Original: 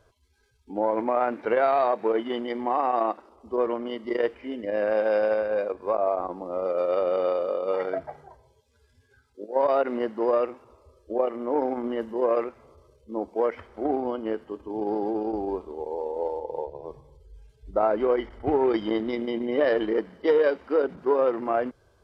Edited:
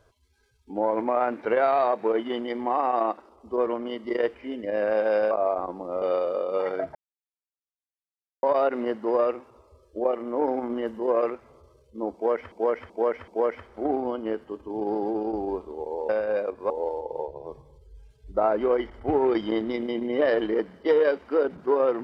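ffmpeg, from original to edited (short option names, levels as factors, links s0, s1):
-filter_complex "[0:a]asplit=10[s0][s1][s2][s3][s4][s5][s6][s7][s8][s9];[s0]atrim=end=5.312[s10];[s1]atrim=start=5.918:end=6.632[s11];[s2]atrim=start=7.158:end=8.09,asetpts=PTS-STARTPTS,afade=t=out:st=0.928:d=0.004:c=hsin[s12];[s3]atrim=start=8.09:end=9.57,asetpts=PTS-STARTPTS,volume=0[s13];[s4]atrim=start=9.57:end=13.662,asetpts=PTS-STARTPTS,afade=t=in:d=0.004:c=hsin[s14];[s5]atrim=start=13.278:end=13.662[s15];[s6]atrim=start=13.278:end=13.662[s16];[s7]atrim=start=13.278:end=16.092[s17];[s8]atrim=start=5.308:end=5.922[s18];[s9]atrim=start=16.088[s19];[s10][s11]acrossfade=d=0.004:c1=hsin:c2=hsin[s20];[s12][s13][s14]concat=n=3:v=0:a=1[s21];[s20][s21]acrossfade=d=0.004:c1=hsin:c2=hsin[s22];[s22][s15]acrossfade=d=0.004:c1=hsin:c2=hsin[s23];[s23][s16]acrossfade=d=0.004:c1=hsin:c2=hsin[s24];[s24][s17]acrossfade=d=0.004:c1=hsin:c2=hsin[s25];[s25][s18]acrossfade=d=0.004:c1=hsin:c2=hsin[s26];[s26][s19]acrossfade=d=0.004:c1=hsin:c2=hsin"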